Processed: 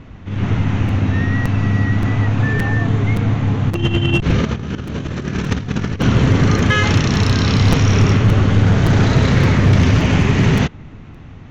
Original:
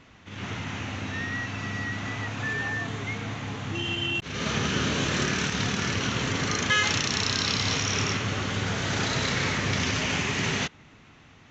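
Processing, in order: tilt -3.5 dB/oct; 3.7–6.02 negative-ratio compressor -26 dBFS, ratio -0.5; hard clip -14.5 dBFS, distortion -20 dB; crackling interface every 0.57 s, samples 256, repeat, from 0.88; gain +8.5 dB

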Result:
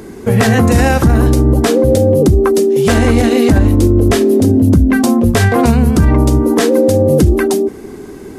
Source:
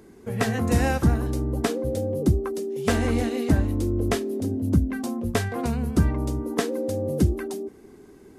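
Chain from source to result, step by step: maximiser +19.5 dB; gain -1 dB

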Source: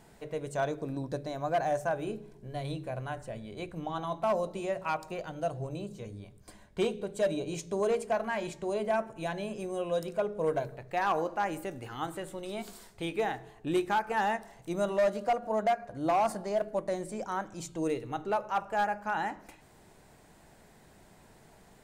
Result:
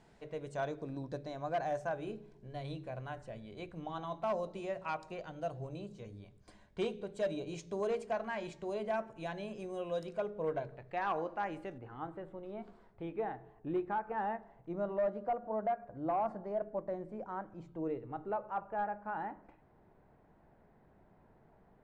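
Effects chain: LPF 5700 Hz 12 dB/oct, from 10.3 s 3300 Hz, from 11.78 s 1300 Hz; gain -6 dB

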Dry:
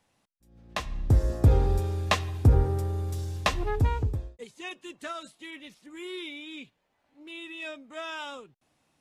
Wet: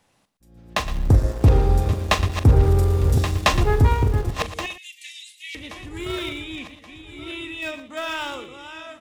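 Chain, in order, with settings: regenerating reverse delay 0.563 s, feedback 60%, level -9.5 dB; 4.66–5.55 steep high-pass 2000 Hz 96 dB/oct; in parallel at -10.5 dB: sample gate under -30.5 dBFS; 1.11–2.62 on the sum: power-law curve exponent 1.4; soft clip -14 dBFS, distortion -15 dB; tapped delay 41/116 ms -13/-13.5 dB; gain +7 dB

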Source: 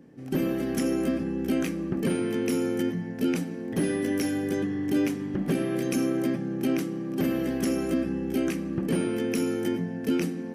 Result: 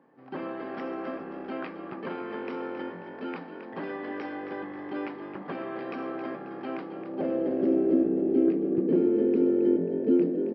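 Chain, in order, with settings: band-pass sweep 1000 Hz -> 360 Hz, 6.69–7.76; frequency-shifting echo 0.269 s, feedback 46%, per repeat +48 Hz, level -10 dB; downsampling 11025 Hz; gain +6.5 dB

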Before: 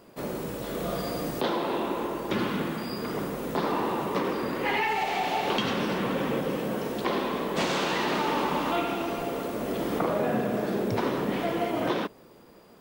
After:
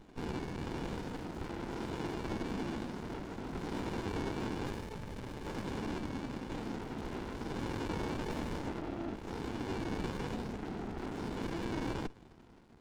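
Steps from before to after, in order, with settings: 8.3–9.15 bell 1200 Hz -> 160 Hz +14.5 dB 2.7 oct; compressor 6:1, threshold -27 dBFS, peak gain reduction 14.5 dB; soft clip -30 dBFS, distortion -12 dB; 5.98–6.5 fixed phaser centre 440 Hz, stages 6; decimation with a swept rate 11×, swing 160% 0.53 Hz; speaker cabinet 330–5300 Hz, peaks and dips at 410 Hz -4 dB, 660 Hz -6 dB, 2000 Hz -4 dB; running maximum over 65 samples; gain +2 dB

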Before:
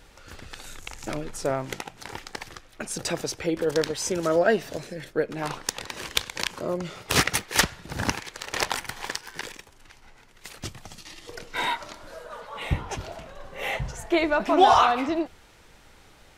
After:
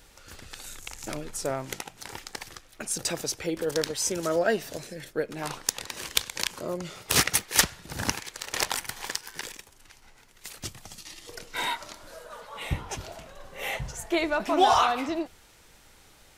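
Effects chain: high shelf 5300 Hz +10.5 dB; gain -4 dB

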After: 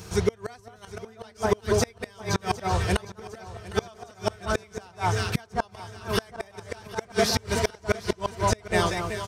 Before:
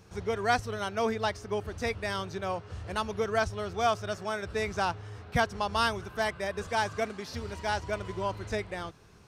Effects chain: high shelf 4300 Hz +10 dB; in parallel at -1 dB: limiter -21 dBFS, peak gain reduction 9.5 dB; on the sum: notch comb 280 Hz; on a send: echo with dull and thin repeats by turns 0.192 s, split 1400 Hz, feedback 58%, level -5 dB; on the sum: flipped gate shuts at -17 dBFS, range -32 dB; feedback echo 0.758 s, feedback 51%, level -17.5 dB; gain +7.5 dB

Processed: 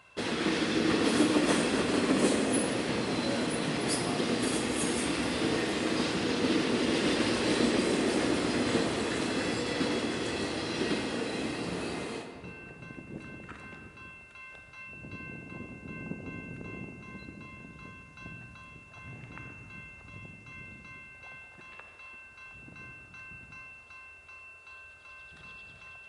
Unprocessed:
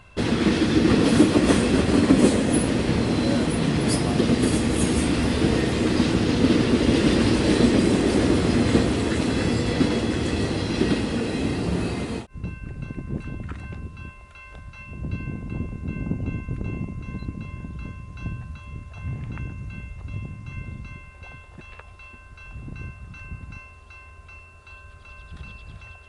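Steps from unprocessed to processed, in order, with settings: HPF 230 Hz 6 dB/oct; low shelf 330 Hz -7 dB; on a send: reverb RT60 2.3 s, pre-delay 30 ms, DRR 5 dB; on the sum: gain -4.5 dB

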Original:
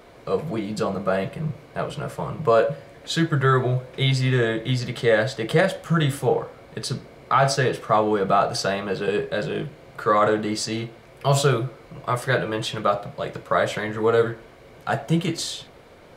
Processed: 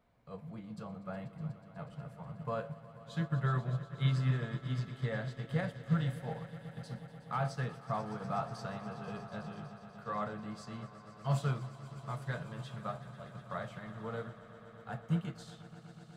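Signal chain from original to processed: EQ curve 230 Hz 0 dB, 350 Hz -15 dB, 790 Hz -5 dB, 5700 Hz -11 dB; on a send: swelling echo 0.122 s, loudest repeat 5, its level -15 dB; on the sum: upward expander 1.5:1, over -36 dBFS; gain -8.5 dB

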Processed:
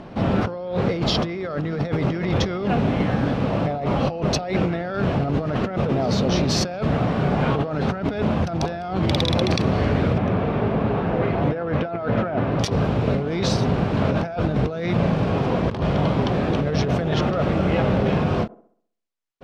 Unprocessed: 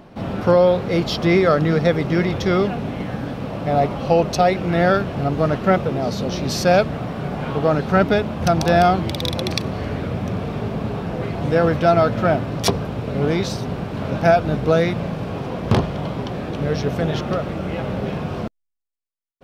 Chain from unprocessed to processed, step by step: 10.18–12.59 tone controls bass -4 dB, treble -15 dB; negative-ratio compressor -24 dBFS, ratio -1; air absorption 65 m; band-limited delay 65 ms, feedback 45%, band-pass 520 Hz, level -20.5 dB; ending taper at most 390 dB/s; gain +2 dB

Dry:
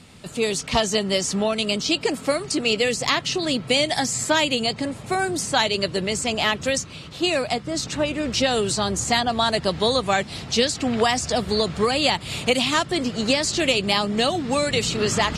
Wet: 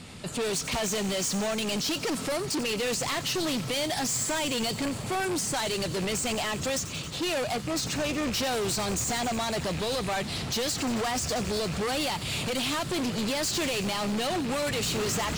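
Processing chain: rattling part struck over -29 dBFS, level -27 dBFS; in parallel at -2.5 dB: level quantiser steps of 13 dB; on the sum: limiter -10.5 dBFS, peak gain reduction 8 dB; soft clip -26.5 dBFS, distortion -6 dB; on a send: thin delay 90 ms, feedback 81%, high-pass 4700 Hz, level -11 dB

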